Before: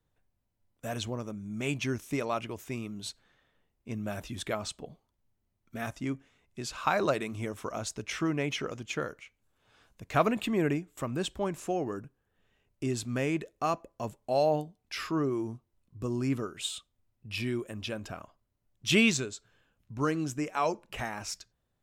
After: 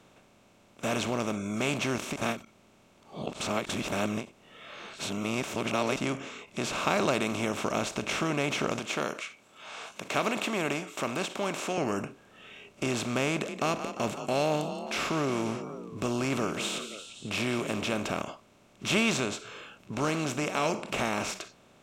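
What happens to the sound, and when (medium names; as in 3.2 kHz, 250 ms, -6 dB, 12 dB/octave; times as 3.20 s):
2.16–5.96 s: reverse
8.79–11.78 s: high-pass 710 Hz 6 dB/octave
13.31–17.97 s: frequency-shifting echo 174 ms, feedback 47%, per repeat +34 Hz, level -22.5 dB
whole clip: spectral levelling over time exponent 0.4; spectral noise reduction 12 dB; endings held to a fixed fall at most 210 dB/s; trim -5 dB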